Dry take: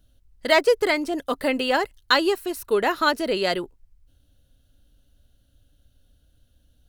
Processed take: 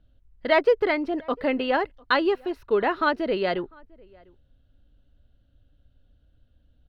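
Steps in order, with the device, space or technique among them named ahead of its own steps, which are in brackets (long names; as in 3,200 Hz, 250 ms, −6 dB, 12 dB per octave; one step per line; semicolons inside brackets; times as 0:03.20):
shout across a valley (high-frequency loss of the air 330 metres; slap from a distant wall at 120 metres, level −27 dB)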